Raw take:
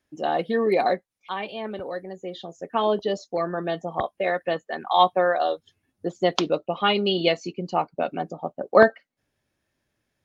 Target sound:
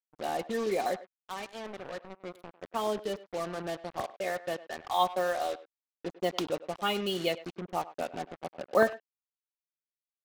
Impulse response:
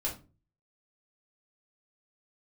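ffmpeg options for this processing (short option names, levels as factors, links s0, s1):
-filter_complex "[0:a]acrusher=bits=4:mix=0:aa=0.5,asplit=2[s0][s1];[s1]adelay=100,highpass=300,lowpass=3400,asoftclip=type=hard:threshold=0.299,volume=0.158[s2];[s0][s2]amix=inputs=2:normalize=0,volume=0.355"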